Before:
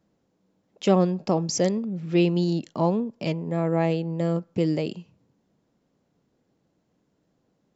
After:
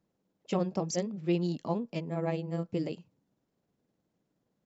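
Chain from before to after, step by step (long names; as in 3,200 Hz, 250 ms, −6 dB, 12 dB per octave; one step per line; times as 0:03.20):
time stretch by overlap-add 0.6×, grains 104 ms
level −7 dB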